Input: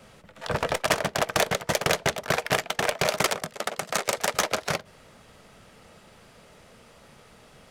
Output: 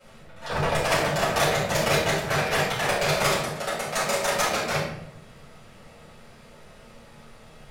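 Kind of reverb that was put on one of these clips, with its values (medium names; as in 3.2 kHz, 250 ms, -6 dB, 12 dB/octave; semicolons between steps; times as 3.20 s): simulated room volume 170 m³, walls mixed, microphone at 4.7 m; trim -11.5 dB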